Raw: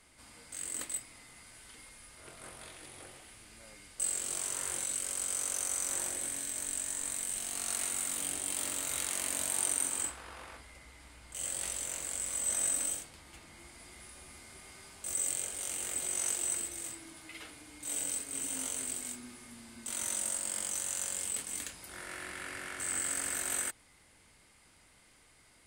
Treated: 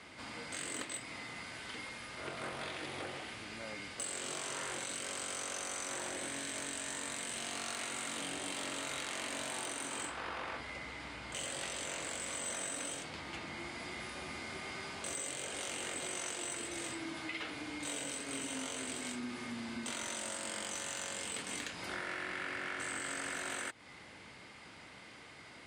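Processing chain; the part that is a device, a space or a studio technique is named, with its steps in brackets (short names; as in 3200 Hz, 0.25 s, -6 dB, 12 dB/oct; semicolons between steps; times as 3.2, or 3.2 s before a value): AM radio (BPF 120–4200 Hz; compressor 6:1, threshold -49 dBFS, peak gain reduction 11 dB; soft clip -38.5 dBFS, distortion -27 dB); gain +12 dB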